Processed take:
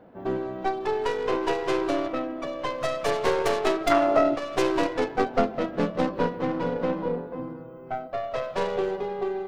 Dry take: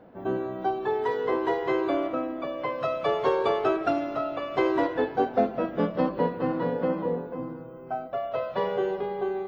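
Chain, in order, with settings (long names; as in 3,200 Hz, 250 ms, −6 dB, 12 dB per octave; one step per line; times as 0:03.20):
stylus tracing distortion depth 0.36 ms
0:03.90–0:04.34: parametric band 1,600 Hz → 270 Hz +13 dB 2.4 octaves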